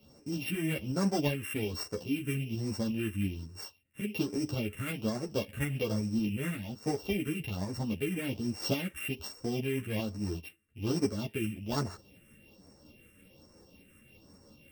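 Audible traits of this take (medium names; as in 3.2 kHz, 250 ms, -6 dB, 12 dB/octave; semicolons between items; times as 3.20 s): a buzz of ramps at a fixed pitch in blocks of 16 samples; phasing stages 4, 1.2 Hz, lowest notch 780–3000 Hz; tremolo saw up 5.5 Hz, depth 35%; a shimmering, thickened sound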